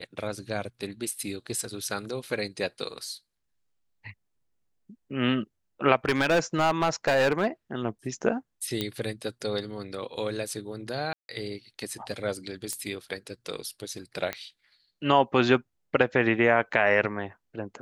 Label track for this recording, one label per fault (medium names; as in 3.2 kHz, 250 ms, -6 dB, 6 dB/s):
2.270000	2.270000	dropout 3.1 ms
6.050000	7.470000	clipped -18.5 dBFS
8.810000	8.810000	pop -14 dBFS
11.130000	11.290000	dropout 161 ms
12.730000	12.730000	pop -16 dBFS
14.330000	14.330000	pop -15 dBFS